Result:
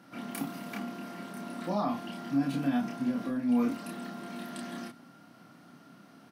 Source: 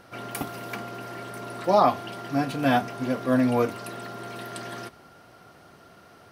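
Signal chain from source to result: HPF 150 Hz 24 dB/oct; resonant low shelf 330 Hz +6 dB, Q 3; limiter -17 dBFS, peak gain reduction 12 dB; doubler 29 ms -2 dB; gain -7.5 dB

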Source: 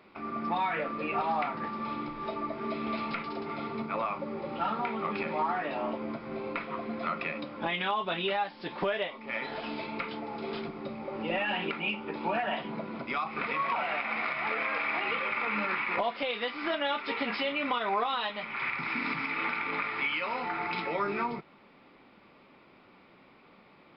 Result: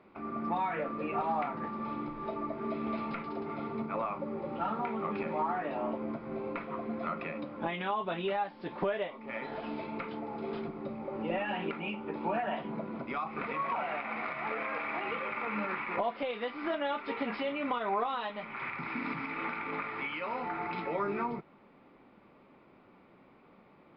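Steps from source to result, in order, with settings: LPF 1100 Hz 6 dB/oct

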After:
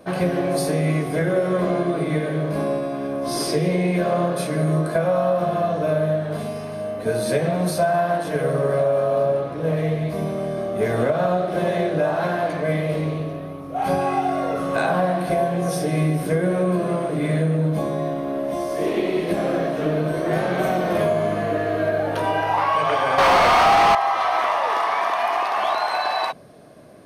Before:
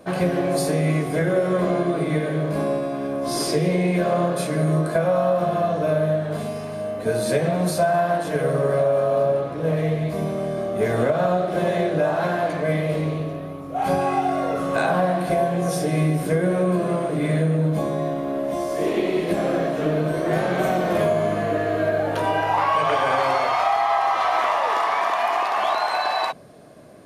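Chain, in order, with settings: 23.18–23.95 overdrive pedal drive 29 dB, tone 2600 Hz, clips at -8.5 dBFS; notch 7200 Hz, Q 6.5

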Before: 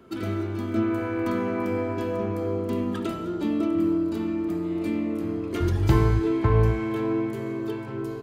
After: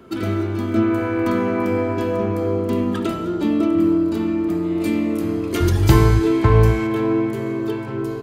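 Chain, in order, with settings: 4.8–6.87 high shelf 4100 Hz +9.5 dB; gain +6.5 dB

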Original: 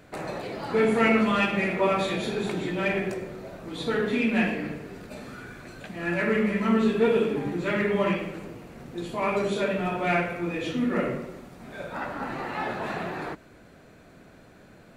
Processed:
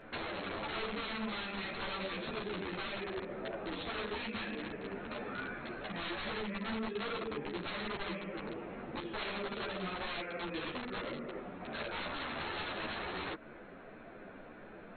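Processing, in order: Wiener smoothing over 9 samples; dynamic EQ 800 Hz, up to -5 dB, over -43 dBFS, Q 2.3; compressor 8:1, threshold -37 dBFS, peak gain reduction 19 dB; bell 79 Hz -12.5 dB 2.5 oct; wrapped overs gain 36.5 dB; brick-wall FIR low-pass 4300 Hz; ensemble effect; gain +7 dB

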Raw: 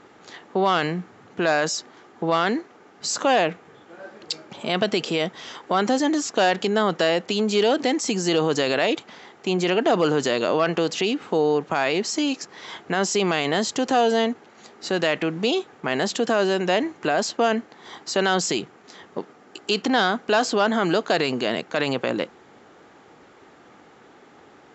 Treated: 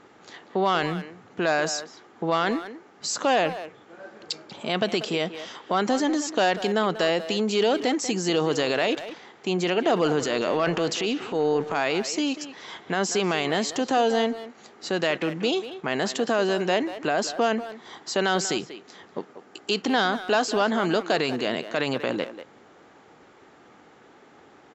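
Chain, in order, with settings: 10.19–11.75 transient shaper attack -5 dB, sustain +6 dB; speakerphone echo 0.19 s, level -11 dB; gain -2.5 dB

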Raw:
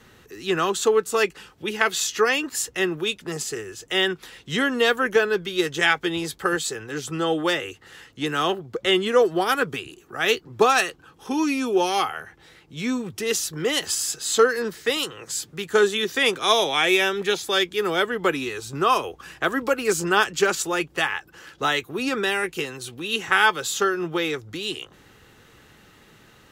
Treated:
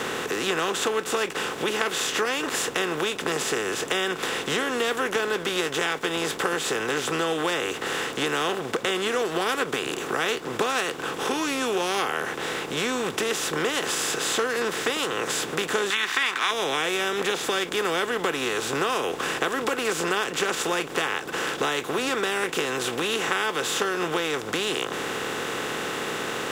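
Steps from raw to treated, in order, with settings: per-bin compression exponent 0.4; 15.9–16.51 ten-band EQ 125 Hz -12 dB, 500 Hz -12 dB, 1000 Hz +7 dB, 2000 Hz +9 dB, 4000 Hz +4 dB; compressor 4:1, threshold -18 dBFS, peak gain reduction 13 dB; crossover distortion -46 dBFS; gain -4.5 dB

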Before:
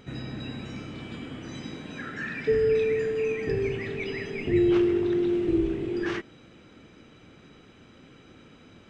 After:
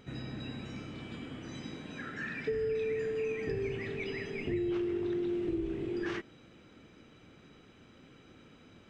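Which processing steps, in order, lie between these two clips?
compressor, threshold -25 dBFS, peak gain reduction 7 dB; gain -5 dB

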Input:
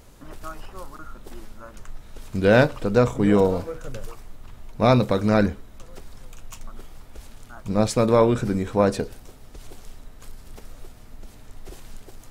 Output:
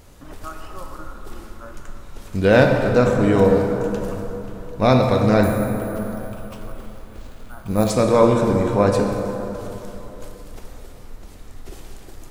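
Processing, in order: plate-style reverb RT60 3.6 s, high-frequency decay 0.5×, DRR 2 dB; 5.43–7.9 careless resampling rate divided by 4×, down filtered, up hold; gain +1.5 dB

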